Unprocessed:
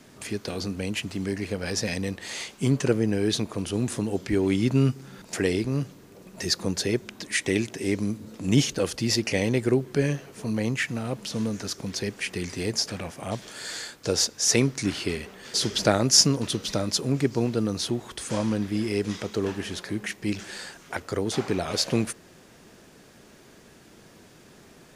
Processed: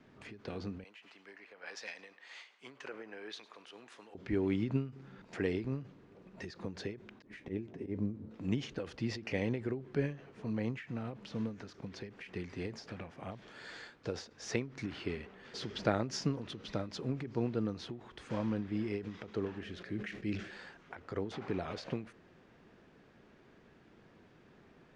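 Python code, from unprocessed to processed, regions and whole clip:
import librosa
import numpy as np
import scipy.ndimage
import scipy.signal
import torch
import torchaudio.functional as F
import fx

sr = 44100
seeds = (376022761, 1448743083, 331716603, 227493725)

y = fx.chain(x, sr, fx.highpass(hz=850.0, slope=12),
    fx.echo_feedback(ms=105, feedback_pct=53, wet_db=-19),
    fx.band_widen(depth_pct=70), at=(0.84, 4.15))
y = fx.chain(y, sr, fx.auto_swell(attack_ms=107.0),
    fx.tilt_shelf(db=8.0, hz=920.0),
    fx.comb_fb(f0_hz=86.0, decay_s=0.15, harmonics='all', damping=0.0, mix_pct=60), at=(7.22, 8.31))
y = fx.chain(y, sr, fx.peak_eq(hz=920.0, db=-13.5, octaves=0.51),
    fx.sustainer(db_per_s=81.0), at=(19.61, 20.51))
y = scipy.signal.sosfilt(scipy.signal.butter(2, 2600.0, 'lowpass', fs=sr, output='sos'), y)
y = fx.peak_eq(y, sr, hz=610.0, db=-2.0, octaves=0.35)
y = fx.end_taper(y, sr, db_per_s=140.0)
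y = y * 10.0 ** (-8.5 / 20.0)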